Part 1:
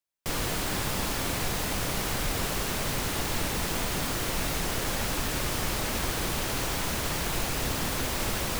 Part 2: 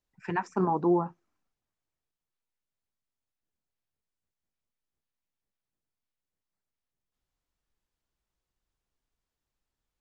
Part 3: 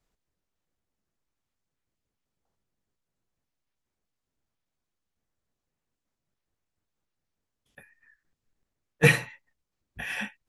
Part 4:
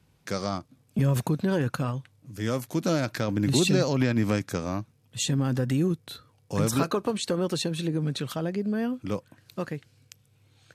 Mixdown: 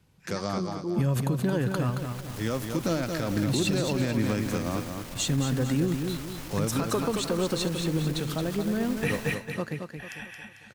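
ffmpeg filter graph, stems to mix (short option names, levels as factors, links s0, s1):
-filter_complex "[0:a]aeval=exprs='clip(val(0),-1,0.0282)':c=same,adelay=750,volume=0.282,asplit=2[s0][s1];[s1]volume=0.106[s2];[1:a]equalizer=f=910:w=0.57:g=-13,volume=0.794,asplit=2[s3][s4];[2:a]volume=0.398,asplit=2[s5][s6];[s6]volume=0.708[s7];[3:a]volume=0.944,asplit=2[s8][s9];[s9]volume=0.473[s10];[s4]apad=whole_len=412103[s11];[s0][s11]sidechaincompress=threshold=0.00282:ratio=8:attack=16:release=893[s12];[s2][s7][s10]amix=inputs=3:normalize=0,aecho=0:1:223|446|669|892|1115|1338:1|0.42|0.176|0.0741|0.0311|0.0131[s13];[s12][s3][s5][s8][s13]amix=inputs=5:normalize=0,alimiter=limit=0.15:level=0:latency=1:release=90"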